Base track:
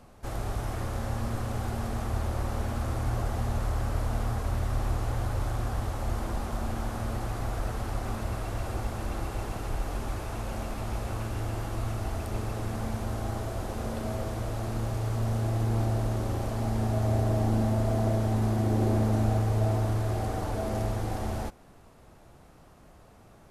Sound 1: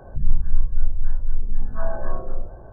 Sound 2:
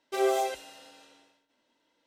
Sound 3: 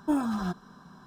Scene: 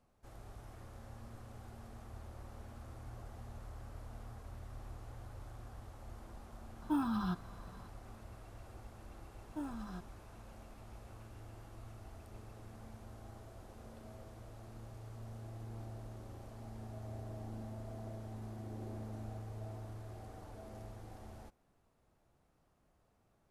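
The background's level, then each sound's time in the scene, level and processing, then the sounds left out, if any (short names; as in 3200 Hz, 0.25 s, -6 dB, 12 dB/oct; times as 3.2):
base track -20 dB
6.82 add 3 -3.5 dB + fixed phaser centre 2000 Hz, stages 6
9.48 add 3 -16 dB
not used: 1, 2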